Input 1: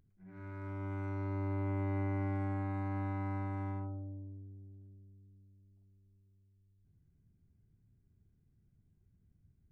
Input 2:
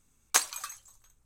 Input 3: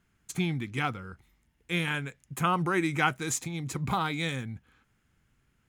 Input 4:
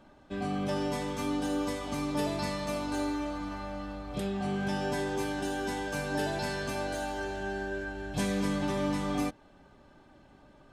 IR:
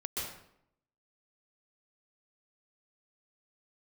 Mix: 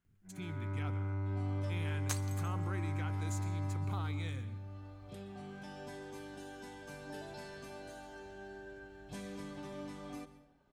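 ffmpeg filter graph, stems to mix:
-filter_complex "[0:a]adynamicequalizer=threshold=0.00282:dfrequency=100:dqfactor=7.1:tfrequency=100:tqfactor=7.1:attack=5:release=100:ratio=0.375:range=3.5:mode=boostabove:tftype=bell,acompressor=threshold=0.0178:ratio=6,adelay=50,volume=1.19[s0];[1:a]adelay=1750,volume=0.168,asplit=2[s1][s2];[s2]volume=0.0631[s3];[2:a]alimiter=limit=0.0944:level=0:latency=1:release=31,volume=0.168,asplit=3[s4][s5][s6];[s5]volume=0.168[s7];[3:a]adelay=950,volume=0.158,asplit=2[s8][s9];[s9]volume=0.178[s10];[s6]apad=whole_len=515020[s11];[s8][s11]sidechaincompress=threshold=0.00126:ratio=8:attack=16:release=531[s12];[4:a]atrim=start_sample=2205[s13];[s3][s7][s10]amix=inputs=3:normalize=0[s14];[s14][s13]afir=irnorm=-1:irlink=0[s15];[s0][s1][s4][s12][s15]amix=inputs=5:normalize=0"

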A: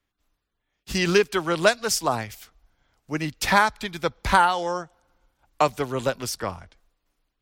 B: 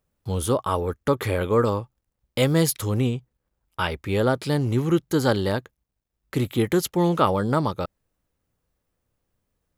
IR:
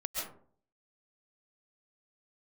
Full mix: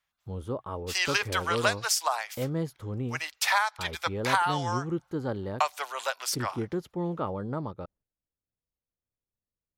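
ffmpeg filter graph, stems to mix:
-filter_complex "[0:a]highpass=f=720:w=0.5412,highpass=f=720:w=1.3066,acompressor=threshold=0.0891:ratio=6,volume=1[s0];[1:a]agate=range=0.355:threshold=0.00355:ratio=16:detection=peak,lowpass=f=1000:p=1,volume=0.316[s1];[s0][s1]amix=inputs=2:normalize=0"

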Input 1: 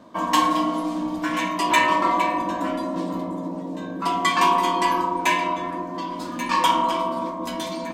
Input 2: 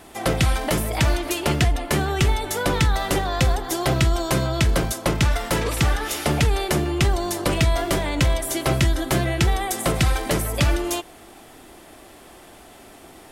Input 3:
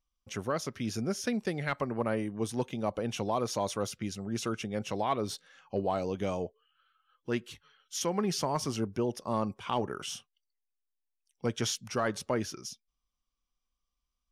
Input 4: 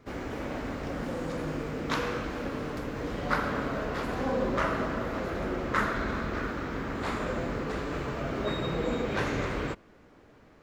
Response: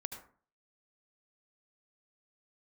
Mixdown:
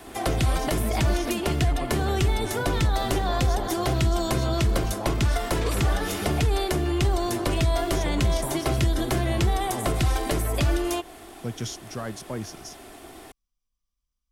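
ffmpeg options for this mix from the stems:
-filter_complex "[1:a]aecho=1:1:2.8:0.32,volume=1[s0];[2:a]bass=f=250:g=9,treble=f=4000:g=6,volume=0.562[s1];[3:a]acompressor=threshold=0.00708:ratio=1.5,volume=0.501[s2];[s0][s1][s2]amix=inputs=3:normalize=0,acrossover=split=120|1100|3000[s3][s4][s5][s6];[s3]acompressor=threshold=0.0891:ratio=4[s7];[s4]acompressor=threshold=0.0562:ratio=4[s8];[s5]acompressor=threshold=0.0141:ratio=4[s9];[s6]acompressor=threshold=0.02:ratio=4[s10];[s7][s8][s9][s10]amix=inputs=4:normalize=0"

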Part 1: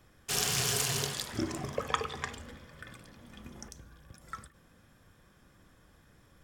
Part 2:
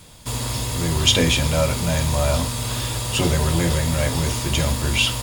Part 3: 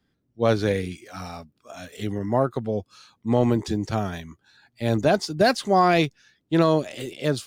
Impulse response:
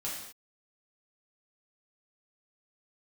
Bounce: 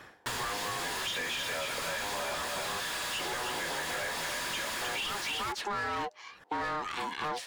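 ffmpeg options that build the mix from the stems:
-filter_complex "[0:a]aeval=exprs='val(0)*pow(10,-24*(0.5-0.5*cos(2*PI*1.7*n/s))/20)':c=same,volume=0.841[s0];[1:a]highpass=f=1000:p=1,acrusher=bits=4:mix=0:aa=0.000001,asoftclip=type=hard:threshold=0.168,volume=0.75,asplit=2[s1][s2];[s2]volume=0.473[s3];[2:a]asoftclip=type=tanh:threshold=0.0708,aeval=exprs='val(0)*sin(2*PI*610*n/s)':c=same,volume=0.631,asplit=2[s4][s5];[s5]apad=whole_len=283930[s6];[s0][s6]sidechaincompress=threshold=0.0126:ratio=8:attack=16:release=1400[s7];[s3]aecho=0:1:310:1[s8];[s7][s1][s4][s8]amix=inputs=4:normalize=0,equalizer=f=1700:w=6.3:g=7.5,asplit=2[s9][s10];[s10]highpass=f=720:p=1,volume=17.8,asoftclip=type=tanh:threshold=0.158[s11];[s9][s11]amix=inputs=2:normalize=0,lowpass=f=2600:p=1,volume=0.501,acompressor=threshold=0.0224:ratio=6"

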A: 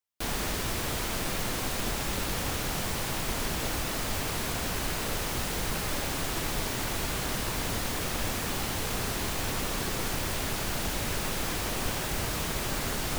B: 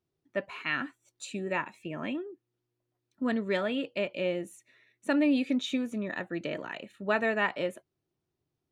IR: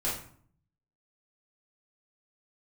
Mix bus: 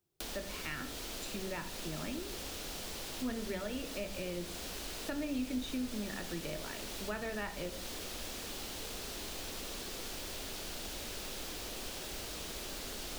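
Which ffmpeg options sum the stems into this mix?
-filter_complex "[0:a]lowshelf=f=250:g=-11.5,acrossover=split=540|2400|5600[s0][s1][s2][s3];[s0]acompressor=threshold=0.00794:ratio=4[s4];[s1]acompressor=threshold=0.00501:ratio=4[s5];[s2]acompressor=threshold=0.00708:ratio=4[s6];[s3]acompressor=threshold=0.00447:ratio=4[s7];[s4][s5][s6][s7]amix=inputs=4:normalize=0,equalizer=f=125:t=o:w=1:g=-12,equalizer=f=1000:t=o:w=1:g=-5,equalizer=f=2000:t=o:w=1:g=-5,volume=1.33[s8];[1:a]volume=0.75,asplit=2[s9][s10];[s10]volume=0.211[s11];[2:a]atrim=start_sample=2205[s12];[s11][s12]afir=irnorm=-1:irlink=0[s13];[s8][s9][s13]amix=inputs=3:normalize=0,acrossover=split=170[s14][s15];[s15]acompressor=threshold=0.00794:ratio=2.5[s16];[s14][s16]amix=inputs=2:normalize=0"

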